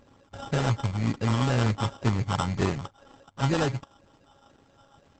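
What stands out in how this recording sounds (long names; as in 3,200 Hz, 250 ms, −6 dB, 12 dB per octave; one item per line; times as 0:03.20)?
a buzz of ramps at a fixed pitch in blocks of 32 samples
phaser sweep stages 6, 2 Hz, lowest notch 470–2,300 Hz
aliases and images of a low sample rate 2,200 Hz, jitter 0%
Opus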